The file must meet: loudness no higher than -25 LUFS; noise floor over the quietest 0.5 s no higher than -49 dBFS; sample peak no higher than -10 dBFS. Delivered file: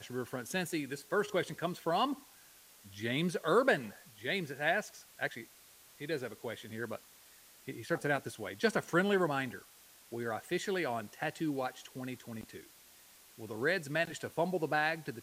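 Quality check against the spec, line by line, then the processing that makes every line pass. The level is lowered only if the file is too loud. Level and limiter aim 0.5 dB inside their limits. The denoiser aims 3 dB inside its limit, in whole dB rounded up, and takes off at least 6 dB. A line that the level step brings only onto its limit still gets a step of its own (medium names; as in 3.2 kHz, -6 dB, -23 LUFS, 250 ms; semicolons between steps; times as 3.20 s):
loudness -35.0 LUFS: pass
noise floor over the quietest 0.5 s -60 dBFS: pass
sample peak -15.5 dBFS: pass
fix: none needed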